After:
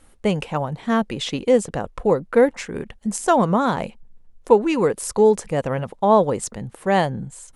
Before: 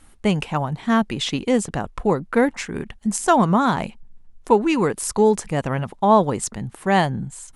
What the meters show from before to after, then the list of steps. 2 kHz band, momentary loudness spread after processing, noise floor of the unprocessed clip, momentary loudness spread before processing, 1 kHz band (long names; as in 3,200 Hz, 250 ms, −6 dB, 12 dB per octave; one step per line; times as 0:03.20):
−2.5 dB, 11 LU, −50 dBFS, 11 LU, −1.5 dB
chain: parametric band 510 Hz +8.5 dB 0.54 octaves
level −2.5 dB